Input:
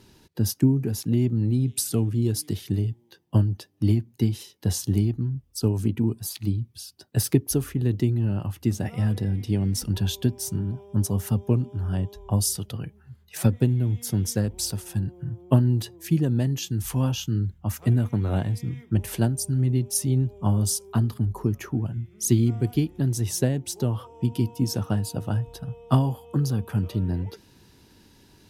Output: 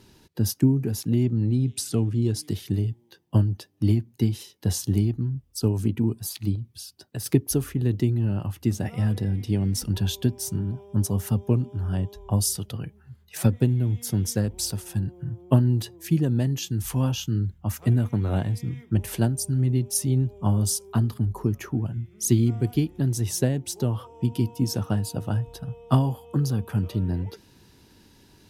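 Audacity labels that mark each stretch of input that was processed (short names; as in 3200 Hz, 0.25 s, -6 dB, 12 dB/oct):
1.230000	2.430000	bell 13000 Hz -10.5 dB 0.71 oct
6.550000	7.260000	compressor, threshold -28 dBFS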